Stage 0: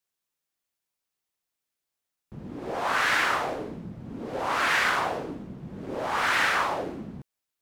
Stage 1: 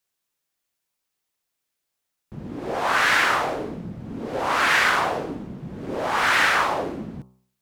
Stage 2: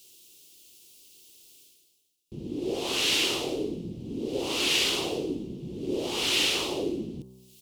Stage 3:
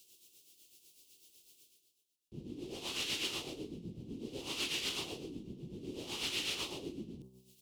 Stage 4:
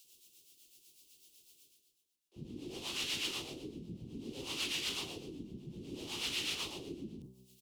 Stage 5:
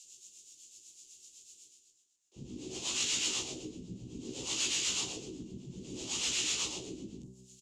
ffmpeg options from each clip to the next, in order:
ffmpeg -i in.wav -af "bandreject=frequency=63.63:width_type=h:width=4,bandreject=frequency=127.26:width_type=h:width=4,bandreject=frequency=190.89:width_type=h:width=4,bandreject=frequency=254.52:width_type=h:width=4,bandreject=frequency=318.15:width_type=h:width=4,bandreject=frequency=381.78:width_type=h:width=4,bandreject=frequency=445.41:width_type=h:width=4,bandreject=frequency=509.04:width_type=h:width=4,bandreject=frequency=572.67:width_type=h:width=4,bandreject=frequency=636.3:width_type=h:width=4,bandreject=frequency=699.93:width_type=h:width=4,bandreject=frequency=763.56:width_type=h:width=4,bandreject=frequency=827.19:width_type=h:width=4,bandreject=frequency=890.82:width_type=h:width=4,bandreject=frequency=954.45:width_type=h:width=4,bandreject=frequency=1018.08:width_type=h:width=4,bandreject=frequency=1081.71:width_type=h:width=4,bandreject=frequency=1145.34:width_type=h:width=4,bandreject=frequency=1208.97:width_type=h:width=4,bandreject=frequency=1272.6:width_type=h:width=4,bandreject=frequency=1336.23:width_type=h:width=4,bandreject=frequency=1399.86:width_type=h:width=4,volume=5dB" out.wav
ffmpeg -i in.wav -af "highshelf=frequency=7800:gain=-8,areverse,acompressor=mode=upward:threshold=-39dB:ratio=2.5,areverse,firequalizer=gain_entry='entry(210,0);entry(360,9);entry(620,-8);entry(1600,-22);entry(2800,8);entry(11000,12)':delay=0.05:min_phase=1,volume=-4dB" out.wav
ffmpeg -i in.wav -filter_complex "[0:a]acrossover=split=280|970[link_01][link_02][link_03];[link_02]acompressor=threshold=-43dB:ratio=6[link_04];[link_03]alimiter=limit=-20dB:level=0:latency=1:release=39[link_05];[link_01][link_04][link_05]amix=inputs=3:normalize=0,tremolo=f=8:d=0.55,volume=-6dB" out.wav
ffmpeg -i in.wav -filter_complex "[0:a]acrossover=split=520[link_01][link_02];[link_01]adelay=40[link_03];[link_03][link_02]amix=inputs=2:normalize=0" out.wav
ffmpeg -i in.wav -filter_complex "[0:a]asoftclip=type=hard:threshold=-33.5dB,lowpass=frequency=7000:width_type=q:width=6.3,asplit=2[link_01][link_02];[link_02]adelay=16,volume=-4dB[link_03];[link_01][link_03]amix=inputs=2:normalize=0" out.wav

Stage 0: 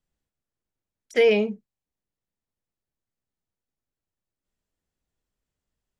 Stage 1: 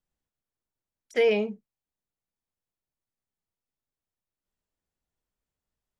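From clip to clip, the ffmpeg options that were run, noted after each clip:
ffmpeg -i in.wav -af "equalizer=frequency=910:width=1:gain=3.5,volume=-5dB" out.wav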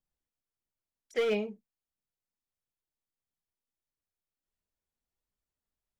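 ffmpeg -i in.wav -af "volume=19dB,asoftclip=hard,volume=-19dB,aphaser=in_gain=1:out_gain=1:delay=4.6:decay=0.29:speed=1.5:type=triangular,volume=-5.5dB" out.wav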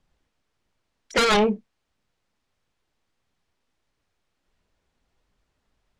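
ffmpeg -i in.wav -af "adynamicsmooth=sensitivity=3:basefreq=5000,aeval=exprs='0.0841*sin(PI/2*3.16*val(0)/0.0841)':channel_layout=same,volume=6.5dB" out.wav

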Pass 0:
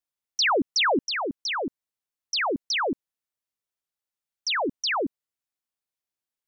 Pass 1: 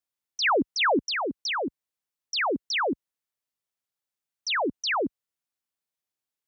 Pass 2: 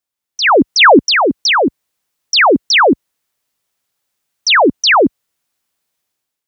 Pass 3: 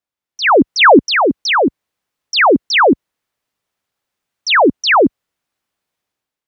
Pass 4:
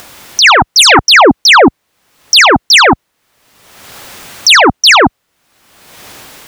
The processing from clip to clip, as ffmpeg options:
ffmpeg -i in.wav -filter_complex "[0:a]highpass=50,acrossover=split=140|2700[link_01][link_02][link_03];[link_03]alimiter=level_in=2.5dB:limit=-24dB:level=0:latency=1,volume=-2.5dB[link_04];[link_01][link_02][link_04]amix=inputs=3:normalize=0" out.wav
ffmpeg -i in.wav -af "dynaudnorm=framelen=150:gausssize=7:maxgain=11dB,volume=6dB" out.wav
ffmpeg -i in.wav -af "highshelf=frequency=4500:gain=-11" out.wav
ffmpeg -i in.wav -af "acompressor=mode=upward:threshold=-19dB:ratio=2.5,aeval=exprs='0.891*sin(PI/2*3.16*val(0)/0.891)':channel_layout=same" out.wav

